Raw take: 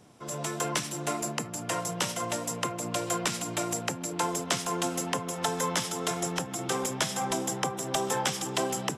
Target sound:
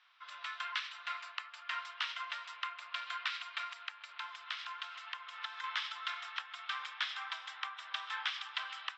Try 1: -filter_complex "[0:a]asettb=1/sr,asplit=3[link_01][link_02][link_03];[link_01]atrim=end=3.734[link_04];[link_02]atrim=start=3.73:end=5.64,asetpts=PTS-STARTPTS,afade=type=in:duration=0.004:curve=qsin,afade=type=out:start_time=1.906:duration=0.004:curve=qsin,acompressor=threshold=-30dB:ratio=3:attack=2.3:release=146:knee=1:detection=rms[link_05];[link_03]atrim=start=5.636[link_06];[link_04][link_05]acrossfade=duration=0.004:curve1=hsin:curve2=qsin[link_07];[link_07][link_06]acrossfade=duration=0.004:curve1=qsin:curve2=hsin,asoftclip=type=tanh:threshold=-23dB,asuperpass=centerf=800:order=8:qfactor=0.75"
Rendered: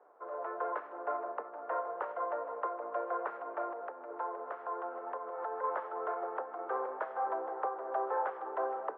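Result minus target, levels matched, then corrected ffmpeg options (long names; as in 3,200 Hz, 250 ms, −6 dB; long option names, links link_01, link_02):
2,000 Hz band −10.0 dB
-filter_complex "[0:a]asettb=1/sr,asplit=3[link_01][link_02][link_03];[link_01]atrim=end=3.734[link_04];[link_02]atrim=start=3.73:end=5.64,asetpts=PTS-STARTPTS,afade=type=in:duration=0.004:curve=qsin,afade=type=out:start_time=1.906:duration=0.004:curve=qsin,acompressor=threshold=-30dB:ratio=3:attack=2.3:release=146:knee=1:detection=rms[link_05];[link_03]atrim=start=5.636[link_06];[link_04][link_05]acrossfade=duration=0.004:curve1=hsin:curve2=qsin[link_07];[link_07][link_06]acrossfade=duration=0.004:curve1=qsin:curve2=hsin,asoftclip=type=tanh:threshold=-23dB,asuperpass=centerf=2200:order=8:qfactor=0.75"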